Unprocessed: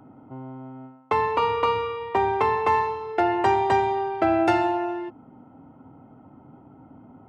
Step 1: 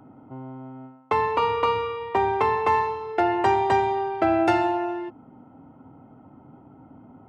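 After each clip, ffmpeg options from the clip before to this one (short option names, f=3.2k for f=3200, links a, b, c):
-af anull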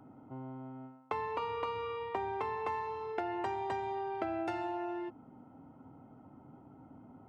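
-af "acompressor=threshold=-27dB:ratio=6,volume=-6.5dB"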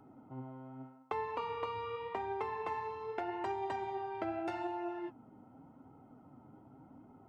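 -af "flanger=delay=2.3:depth=7.4:regen=58:speed=0.84:shape=sinusoidal,volume=2dB"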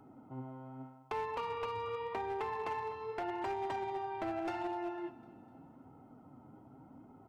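-af "aecho=1:1:251|502|753|1004:0.133|0.0653|0.032|0.0157,asoftclip=type=hard:threshold=-33dB,volume=1dB"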